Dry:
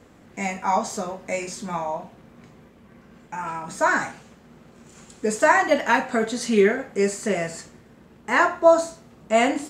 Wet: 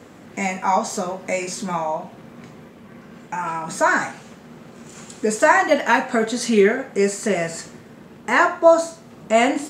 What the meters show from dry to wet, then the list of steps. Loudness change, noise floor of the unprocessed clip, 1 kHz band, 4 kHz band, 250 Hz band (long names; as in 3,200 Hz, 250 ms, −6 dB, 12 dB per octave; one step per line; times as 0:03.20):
+2.5 dB, −52 dBFS, +2.5 dB, +3.5 dB, +3.0 dB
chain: high-pass filter 110 Hz 12 dB per octave
in parallel at +1 dB: downward compressor, threshold −36 dBFS, peak gain reduction 24 dB
on the sum: level +1.5 dB